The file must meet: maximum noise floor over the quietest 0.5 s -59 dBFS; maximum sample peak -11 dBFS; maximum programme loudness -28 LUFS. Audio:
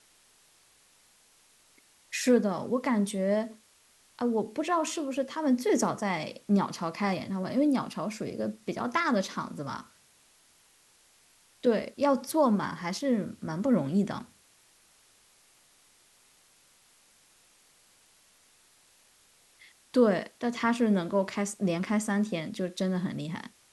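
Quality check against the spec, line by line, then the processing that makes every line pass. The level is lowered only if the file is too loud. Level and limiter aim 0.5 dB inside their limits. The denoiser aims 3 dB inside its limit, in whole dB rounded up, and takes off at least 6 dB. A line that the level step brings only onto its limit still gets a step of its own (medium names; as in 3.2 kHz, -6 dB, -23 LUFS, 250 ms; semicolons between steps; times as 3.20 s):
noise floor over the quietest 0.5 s -63 dBFS: pass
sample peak -12.5 dBFS: pass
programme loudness -29.5 LUFS: pass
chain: none needed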